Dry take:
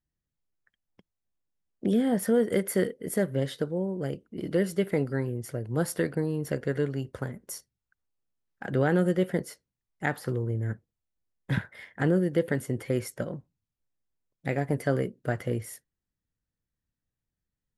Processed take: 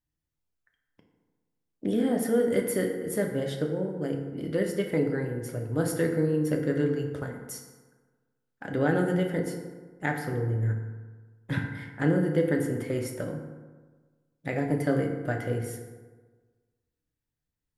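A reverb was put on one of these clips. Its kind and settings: FDN reverb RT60 1.4 s, low-frequency decay 1×, high-frequency decay 0.5×, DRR 2 dB; gain -2 dB

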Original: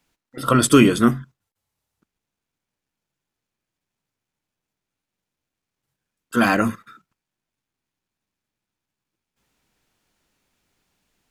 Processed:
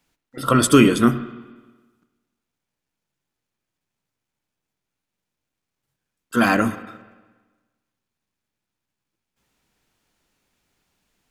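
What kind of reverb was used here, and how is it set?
spring tank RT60 1.3 s, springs 51/58 ms, chirp 60 ms, DRR 13 dB

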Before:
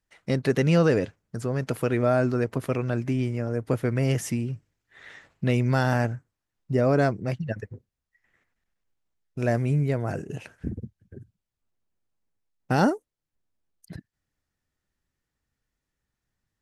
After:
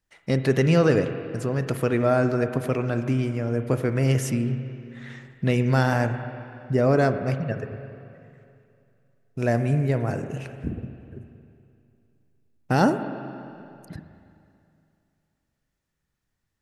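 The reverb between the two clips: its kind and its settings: spring tank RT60 2.6 s, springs 38/45/51 ms, chirp 80 ms, DRR 8.5 dB; gain +1.5 dB

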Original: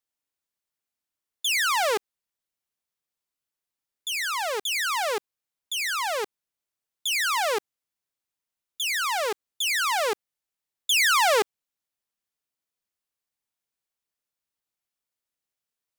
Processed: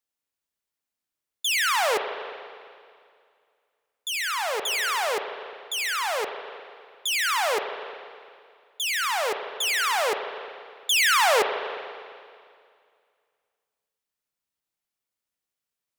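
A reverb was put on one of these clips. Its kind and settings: spring tank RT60 2.2 s, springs 35/50 ms, chirp 70 ms, DRR 6 dB

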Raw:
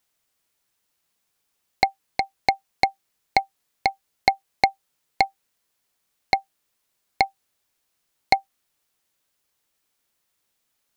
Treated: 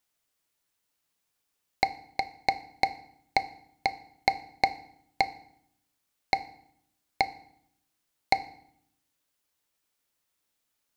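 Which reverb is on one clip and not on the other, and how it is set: FDN reverb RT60 0.68 s, low-frequency decay 1.55×, high-frequency decay 0.85×, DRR 11.5 dB; gain -5 dB

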